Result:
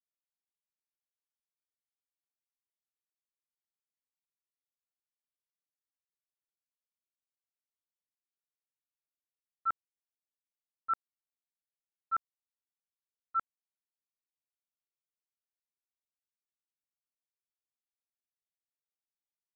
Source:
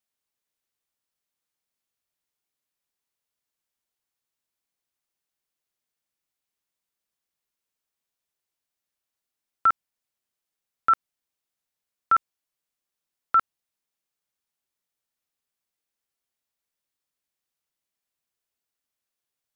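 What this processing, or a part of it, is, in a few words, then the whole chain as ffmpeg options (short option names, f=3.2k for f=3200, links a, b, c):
hearing-loss simulation: -af "lowpass=1.7k,agate=range=-33dB:threshold=-10dB:ratio=3:detection=peak,volume=2dB"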